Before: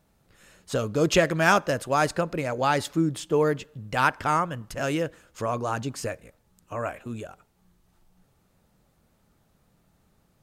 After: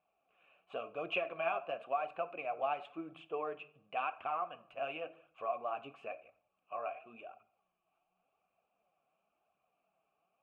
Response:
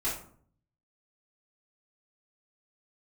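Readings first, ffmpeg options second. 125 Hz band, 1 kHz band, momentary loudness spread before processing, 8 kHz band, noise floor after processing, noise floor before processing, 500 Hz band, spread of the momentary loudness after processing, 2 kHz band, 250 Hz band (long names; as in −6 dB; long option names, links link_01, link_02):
−33.0 dB, −11.5 dB, 13 LU, below −40 dB, −83 dBFS, −67 dBFS, −13.5 dB, 11 LU, −16.0 dB, −23.5 dB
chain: -filter_complex "[0:a]asplit=3[link_01][link_02][link_03];[link_01]bandpass=frequency=730:width_type=q:width=8,volume=0dB[link_04];[link_02]bandpass=frequency=1090:width_type=q:width=8,volume=-6dB[link_05];[link_03]bandpass=frequency=2440:width_type=q:width=8,volume=-9dB[link_06];[link_04][link_05][link_06]amix=inputs=3:normalize=0,acompressor=threshold=-32dB:ratio=6,asplit=2[link_07][link_08];[1:a]atrim=start_sample=2205[link_09];[link_08][link_09]afir=irnorm=-1:irlink=0,volume=-16.5dB[link_10];[link_07][link_10]amix=inputs=2:normalize=0,flanger=delay=0.4:depth=7.2:regen=45:speed=0.94:shape=triangular,highshelf=frequency=3800:width_type=q:width=3:gain=-11,volume=2dB"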